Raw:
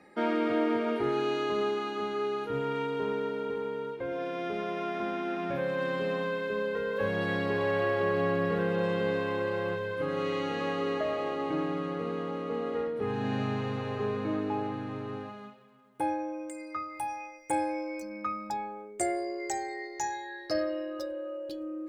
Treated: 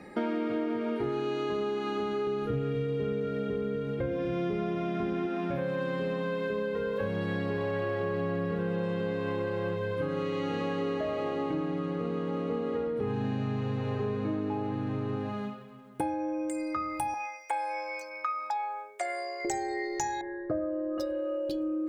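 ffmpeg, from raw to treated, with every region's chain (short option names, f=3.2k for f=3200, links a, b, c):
-filter_complex "[0:a]asettb=1/sr,asplit=3[a][b][c];[a]atrim=end=2.274[d];[b]atrim=start=2.27:end=5.27,asetpts=PTS-STARTPTS,afade=t=in:d=0.004:c=qsin,afade=t=out:st=2.996:d=0.004:c=qsin,asuperstop=centerf=920:order=4:qfactor=5.8,lowshelf=f=210:g=10.5,aecho=1:1:247:0.422,atrim=end_sample=132300[e];[c]atrim=start=5.266[f];[d][e]acrossfade=d=0.004:c1=hsin:c2=qsin[g];[g][f]acrossfade=d=0.004:c1=qsin:c2=hsin,asettb=1/sr,asplit=3[h][i][j];[h]atrim=end=17.144[k];[i]atrim=start=17.14:end=19.45,asetpts=PTS-STARTPTS,afade=t=in:d=0.004:c=qsin,afade=t=out:st=2.306:d=0.004:c=qsin,highpass=f=700:w=0.5412,highpass=f=700:w=1.3066,acrossover=split=4700[l][m];[m]acompressor=threshold=-59dB:ratio=4:attack=1:release=60[n];[l][n]amix=inputs=2:normalize=0[o];[j]atrim=start=19.446[p];[k][o]acrossfade=d=0.004:c1=hsin:c2=qsin[q];[q][p]acrossfade=d=0.004:c1=qsin:c2=hsin,asettb=1/sr,asplit=3[r][s][t];[r]atrim=end=20.214[u];[s]atrim=start=20.21:end=20.98,asetpts=PTS-STARTPTS,afade=t=in:d=0.004:c=qsin,afade=t=out:st=0.766:d=0.004:c=qsin,lowpass=f=1.3k:w=0.5412,lowpass=f=1.3k:w=1.3066,equalizer=f=810:w=6.5:g=-13[v];[t]atrim=start=20.976[w];[u][v]acrossfade=d=0.004:c1=hsin:c2=qsin[x];[x][w]acrossfade=d=0.004:c1=qsin:c2=hsin,lowshelf=f=290:g=9.5,bandreject=f=53.72:t=h:w=4,bandreject=f=107.44:t=h:w=4,bandreject=f=161.16:t=h:w=4,bandreject=f=214.88:t=h:w=4,bandreject=f=268.6:t=h:w=4,bandreject=f=322.32:t=h:w=4,bandreject=f=376.04:t=h:w=4,bandreject=f=429.76:t=h:w=4,bandreject=f=483.48:t=h:w=4,bandreject=f=537.2:t=h:w=4,bandreject=f=590.92:t=h:w=4,bandreject=f=644.64:t=h:w=4,bandreject=f=698.36:t=h:w=4,bandreject=f=752.08:t=h:w=4,bandreject=f=805.8:t=h:w=4,bandreject=f=859.52:t=h:w=4,bandreject=f=913.24:t=h:w=4,bandreject=f=966.96:t=h:w=4,bandreject=f=1.02068k:t=h:w=4,bandreject=f=1.0744k:t=h:w=4,bandreject=f=1.12812k:t=h:w=4,bandreject=f=1.18184k:t=h:w=4,bandreject=f=1.23556k:t=h:w=4,bandreject=f=1.28928k:t=h:w=4,bandreject=f=1.343k:t=h:w=4,bandreject=f=1.39672k:t=h:w=4,bandreject=f=1.45044k:t=h:w=4,bandreject=f=1.50416k:t=h:w=4,bandreject=f=1.55788k:t=h:w=4,bandreject=f=1.6116k:t=h:w=4,bandreject=f=1.66532k:t=h:w=4,bandreject=f=1.71904k:t=h:w=4,bandreject=f=1.77276k:t=h:w=4,bandreject=f=1.82648k:t=h:w=4,bandreject=f=1.8802k:t=h:w=4,bandreject=f=1.93392k:t=h:w=4,bandreject=f=1.98764k:t=h:w=4,bandreject=f=2.04136k:t=h:w=4,bandreject=f=2.09508k:t=h:w=4,acompressor=threshold=-36dB:ratio=6,volume=7dB"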